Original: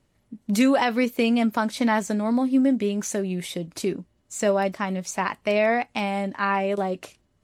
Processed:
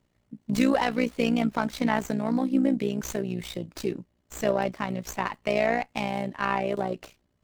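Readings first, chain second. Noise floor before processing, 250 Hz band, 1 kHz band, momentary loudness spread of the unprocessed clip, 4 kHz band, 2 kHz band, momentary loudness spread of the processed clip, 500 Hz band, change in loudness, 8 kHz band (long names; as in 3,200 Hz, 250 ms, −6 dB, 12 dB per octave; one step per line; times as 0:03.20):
−68 dBFS, −3.5 dB, −3.5 dB, 9 LU, −3.5 dB, −4.0 dB, 9 LU, −3.5 dB, −3.5 dB, −7.0 dB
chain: amplitude modulation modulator 60 Hz, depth 65%
windowed peak hold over 3 samples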